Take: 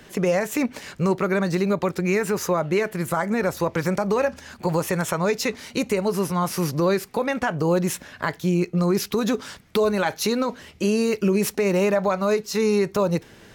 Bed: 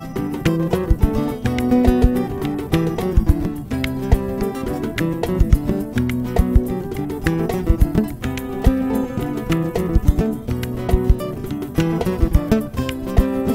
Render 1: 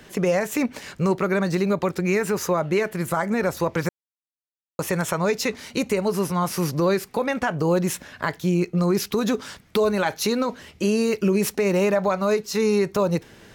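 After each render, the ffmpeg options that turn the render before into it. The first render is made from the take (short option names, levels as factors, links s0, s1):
-filter_complex "[0:a]asplit=3[s0][s1][s2];[s0]atrim=end=3.89,asetpts=PTS-STARTPTS,afade=t=out:st=3.886:d=0.004:c=hsin[s3];[s1]atrim=start=3.89:end=4.79,asetpts=PTS-STARTPTS,volume=0[s4];[s2]atrim=start=4.79,asetpts=PTS-STARTPTS,afade=t=in:d=0.004:c=hsin[s5];[s3][s4][s5]concat=n=3:v=0:a=1"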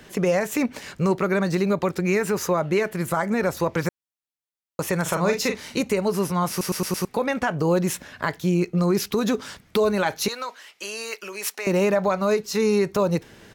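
-filter_complex "[0:a]asplit=3[s0][s1][s2];[s0]afade=t=out:st=5.05:d=0.02[s3];[s1]asplit=2[s4][s5];[s5]adelay=41,volume=0.501[s6];[s4][s6]amix=inputs=2:normalize=0,afade=t=in:st=5.05:d=0.02,afade=t=out:st=5.8:d=0.02[s7];[s2]afade=t=in:st=5.8:d=0.02[s8];[s3][s7][s8]amix=inputs=3:normalize=0,asettb=1/sr,asplit=3[s9][s10][s11];[s9]atrim=end=10.284[s12];[s10]atrim=start=10.28:end=11.67,asetpts=PTS-STARTPTS,afade=t=in:d=0.004:c=qsin,afade=t=out:st=1.386:d=0.004:c=qsin,highpass=950[s13];[s11]atrim=start=11.666[s14];[s12][s13]acrossfade=d=0.004:c1=hsin:c2=qsin[s15];[s15][s14]acrossfade=d=0.004:c1=qsin:c2=hsin,asplit=6[s16][s17][s18][s19][s20][s21];[s16]atrim=end=6.612[s22];[s17]atrim=start=6.498:end=6.612[s23];[s18]atrim=start=6.498:end=6.612[s24];[s19]atrim=start=6.498:end=6.612[s25];[s20]atrim=start=6.498:end=6.612[s26];[s21]atrim=start=7.048[s27];[s22][s23]acrossfade=d=0.004:c1=hsin:c2=hsin[s28];[s28][s24]acrossfade=d=0.004:c1=hsin:c2=hsin[s29];[s29][s25]acrossfade=d=0.004:c1=hsin:c2=hsin[s30];[s30][s26]acrossfade=d=0.004:c1=hsin:c2=hsin[s31];[s31][s27]acrossfade=d=0.004:c1=hsin:c2=hsin"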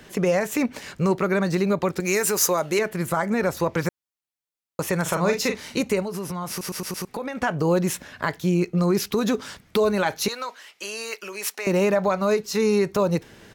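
-filter_complex "[0:a]asettb=1/sr,asplit=3[s0][s1][s2];[s0]atrim=end=2.004[s3];[s1]atrim=start=2:end=2.79,asetpts=PTS-STARTPTS,afade=t=in:d=0.004:c=qsin,afade=t=out:st=0.786:d=0.004:c=qsin,bass=f=250:g=-8,treble=f=4000:g=13[s4];[s2]atrim=start=2.786[s5];[s3][s4]acrossfade=d=0.004:c1=hsin:c2=qsin[s6];[s6][s5]acrossfade=d=0.004:c1=qsin:c2=hsin,asettb=1/sr,asplit=3[s7][s8][s9];[s7]atrim=end=6.024[s10];[s8]atrim=start=6.02:end=7.4,asetpts=PTS-STARTPTS,afade=t=in:d=0.004:c=qsin,afade=t=out:st=1.376:d=0.004:c=qsin,acompressor=threshold=0.0501:ratio=6:attack=3.2:release=140:knee=1:detection=peak[s11];[s9]atrim=start=7.396[s12];[s10][s11]acrossfade=d=0.004:c1=hsin:c2=qsin[s13];[s13][s12]acrossfade=d=0.004:c1=qsin:c2=hsin"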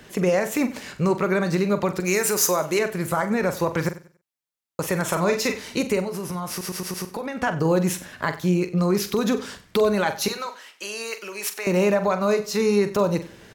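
-filter_complex "[0:a]asplit=2[s0][s1];[s1]adelay=44,volume=0.282[s2];[s0][s2]amix=inputs=2:normalize=0,aecho=1:1:94|188|282:0.133|0.0387|0.0112"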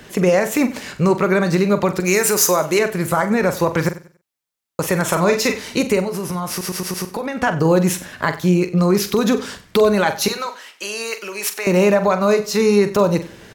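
-af "volume=1.88,alimiter=limit=0.708:level=0:latency=1"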